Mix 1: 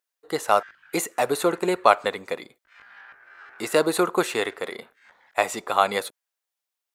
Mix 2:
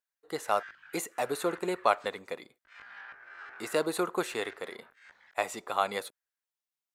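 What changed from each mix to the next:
speech -8.5 dB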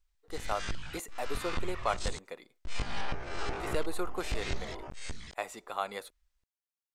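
speech -6.0 dB; background: remove band-pass filter 1.6 kHz, Q 4.7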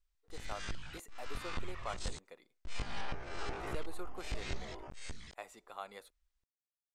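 speech -11.0 dB; background -5.0 dB

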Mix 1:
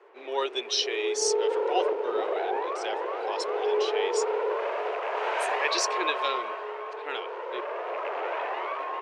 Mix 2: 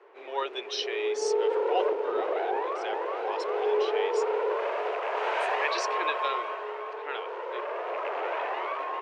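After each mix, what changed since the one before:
speech: add band-pass filter 1.2 kHz, Q 0.58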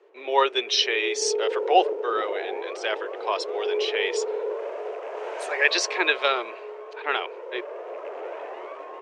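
speech +11.0 dB; background: add high-order bell 1.9 kHz -9 dB 2.9 oct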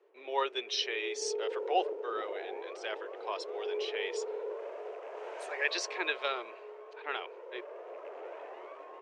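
speech -11.0 dB; background -9.5 dB

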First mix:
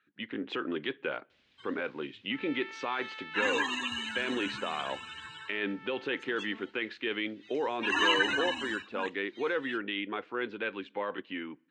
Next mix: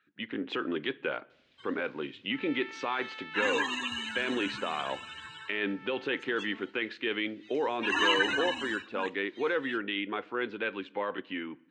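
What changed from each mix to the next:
speech: send +9.5 dB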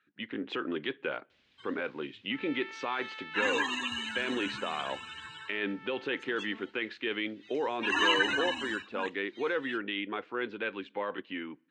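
speech: send -10.5 dB

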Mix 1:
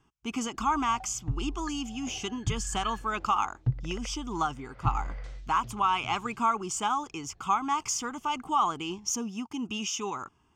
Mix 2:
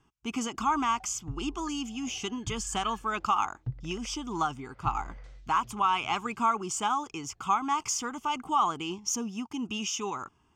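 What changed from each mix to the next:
background -7.5 dB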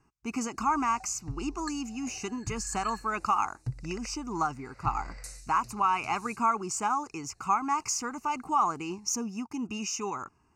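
background: remove tape spacing loss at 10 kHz 41 dB; master: add Butterworth band-stop 3.3 kHz, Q 2.6

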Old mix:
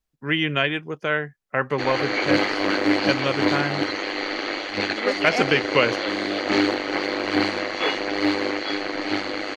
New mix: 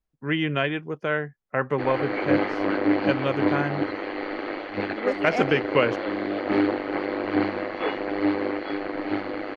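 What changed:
background: add distance through air 250 m; master: add treble shelf 2.3 kHz -11 dB

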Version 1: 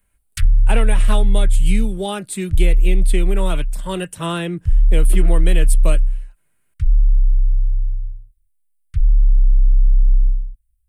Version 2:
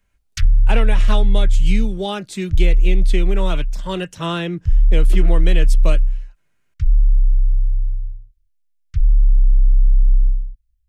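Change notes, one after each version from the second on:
master: add resonant high shelf 7.5 kHz -8 dB, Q 3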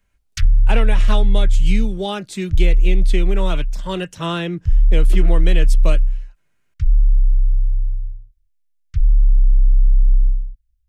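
no change

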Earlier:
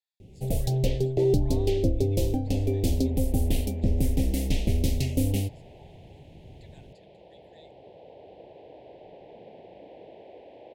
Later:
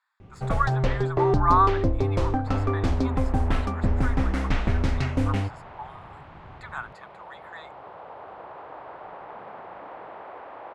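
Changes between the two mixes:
speech +7.0 dB; first sound: add distance through air 120 m; master: remove Chebyshev band-stop 510–3100 Hz, order 2

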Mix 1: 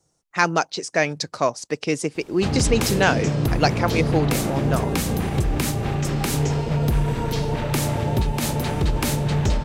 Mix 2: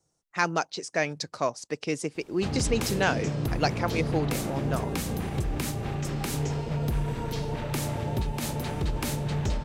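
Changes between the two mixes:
speech -6.5 dB; background -7.5 dB

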